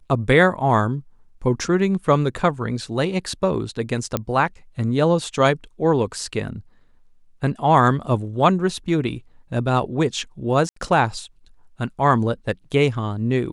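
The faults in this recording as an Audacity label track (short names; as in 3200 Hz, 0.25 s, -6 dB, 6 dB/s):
4.170000	4.170000	pop -8 dBFS
10.690000	10.760000	gap 74 ms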